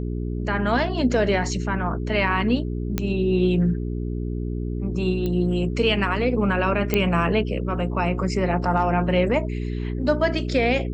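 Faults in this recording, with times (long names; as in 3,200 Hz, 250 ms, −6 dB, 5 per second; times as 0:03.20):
mains hum 60 Hz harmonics 7 −27 dBFS
0:02.98: click −9 dBFS
0:05.26: click −16 dBFS
0:06.94: click −6 dBFS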